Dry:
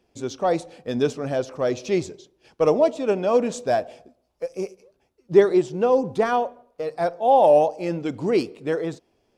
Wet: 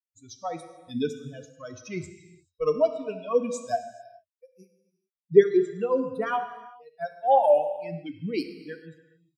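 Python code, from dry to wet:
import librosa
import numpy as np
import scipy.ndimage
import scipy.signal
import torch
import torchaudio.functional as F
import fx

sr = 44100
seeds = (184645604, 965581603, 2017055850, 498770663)

y = fx.bin_expand(x, sr, power=3.0)
y = fx.rev_gated(y, sr, seeds[0], gate_ms=460, shape='falling', drr_db=8.0)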